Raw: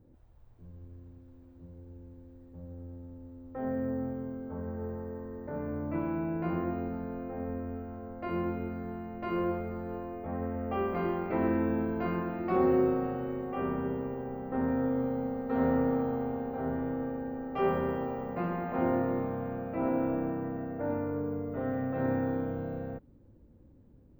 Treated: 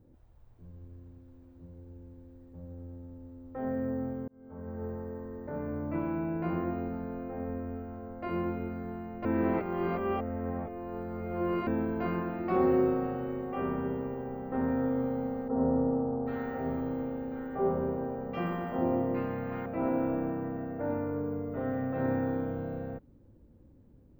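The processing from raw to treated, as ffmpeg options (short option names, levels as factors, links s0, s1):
-filter_complex "[0:a]asettb=1/sr,asplit=3[s0][s1][s2];[s0]atrim=end=15.484[s3];[s1]atrim=start=15.48:end=19.66,asetpts=PTS-STARTPTS,afade=t=in:d=0.004:c=qsin,afade=t=out:st=4.176:d=0.004:c=qsin,acrossover=split=1100[s4][s5];[s5]adelay=780[s6];[s4][s6]amix=inputs=2:normalize=0,atrim=end_sample=184338[s7];[s2]atrim=start=19.656[s8];[s3][s7]acrossfade=d=0.004:c1=hsin:c2=qsin[s9];[s9][s8]acrossfade=d=0.004:c1=qsin:c2=hsin,asplit=4[s10][s11][s12][s13];[s10]atrim=end=4.28,asetpts=PTS-STARTPTS,afade=t=out:st=4.276:d=0.004:c=hsin[s14];[s11]atrim=start=4.28:end=9.252,asetpts=PTS-STARTPTS,afade=t=in:d=0.57[s15];[s12]atrim=start=9.248:end=11.672,asetpts=PTS-STARTPTS,areverse[s16];[s13]atrim=start=11.668[s17];[s14][s15]concat=n=2:v=0:a=1[s18];[s18][s16]acrossfade=d=0.004:c1=hsin:c2=hsin[s19];[s19][s17]acrossfade=d=0.004:c1=hsin:c2=hsin"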